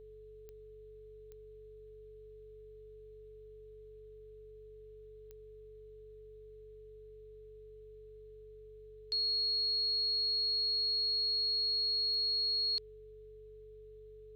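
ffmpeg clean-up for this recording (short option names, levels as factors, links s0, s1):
-af "adeclick=t=4,bandreject=f=48.3:t=h:w=4,bandreject=f=96.6:t=h:w=4,bandreject=f=144.9:t=h:w=4,bandreject=f=430:w=30,agate=range=0.0891:threshold=0.00562"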